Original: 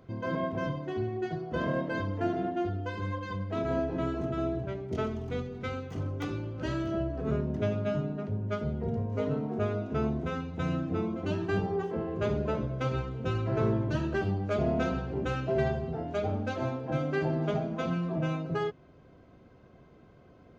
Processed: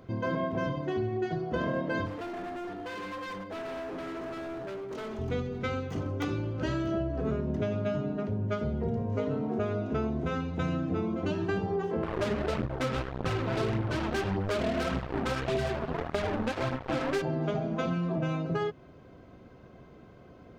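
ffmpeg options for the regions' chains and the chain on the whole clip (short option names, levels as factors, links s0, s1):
-filter_complex "[0:a]asettb=1/sr,asplit=3[s0][s1][s2];[s0]atrim=end=2.064[s3];[s1]atrim=start=2.06:end=5.19,asetpts=PTS-STARTPTS,afade=t=in:d=0.004:c=qsin,afade=t=out:st=3.126:d=0.004:c=qsin,highpass=270,acompressor=threshold=0.02:ratio=3:attack=3.2:release=140:knee=1:detection=peak,asoftclip=type=hard:threshold=0.01[s4];[s2]atrim=start=5.186[s5];[s3][s4]acrossfade=d=0.004:c1=hsin:c2=qsin[s6];[s6][s5]acrossfade=d=0.004:c1=qsin:c2=hsin,asettb=1/sr,asplit=3[s7][s8][s9];[s7]atrim=end=12.034[s10];[s8]atrim=start=12.03:end=17.22,asetpts=PTS-STARTPTS,afade=t=in:d=0.004:c=qsin,afade=t=out:st=5.186:d=0.004:c=qsin,lowpass=5100,acrusher=bits=4:mix=0:aa=0.5,aphaser=in_gain=1:out_gain=1:delay=4.8:decay=0.43:speed=1.7:type=triangular[s11];[s9]atrim=start=17.216[s12];[s10][s11]acrossfade=d=0.004:c1=hsin:c2=qsin[s13];[s13][s12]acrossfade=d=0.004:c1=qsin:c2=hsin,bandreject=f=50:t=h:w=6,bandreject=f=100:t=h:w=6,bandreject=f=150:t=h:w=6,acompressor=threshold=0.0282:ratio=6,volume=1.68"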